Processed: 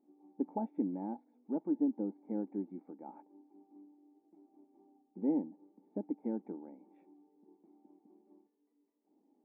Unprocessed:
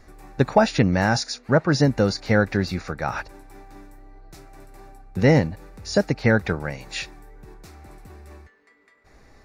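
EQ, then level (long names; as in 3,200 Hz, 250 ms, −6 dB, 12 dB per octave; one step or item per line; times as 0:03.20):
formant resonators in series u
linear-phase brick-wall high-pass 180 Hz
−7.0 dB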